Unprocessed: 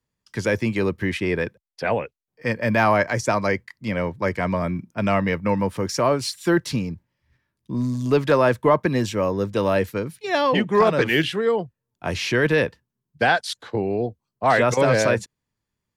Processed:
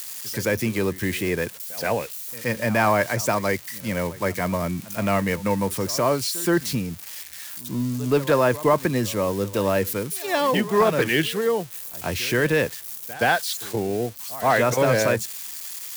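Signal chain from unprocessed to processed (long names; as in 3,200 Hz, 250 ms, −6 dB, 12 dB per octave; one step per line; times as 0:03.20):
spike at every zero crossing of −23 dBFS
echo ahead of the sound 124 ms −18.5 dB
level −1.5 dB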